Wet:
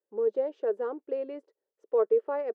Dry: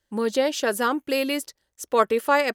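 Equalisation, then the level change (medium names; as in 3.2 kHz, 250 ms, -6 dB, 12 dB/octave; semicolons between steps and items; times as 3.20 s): ladder band-pass 470 Hz, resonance 70%; 0.0 dB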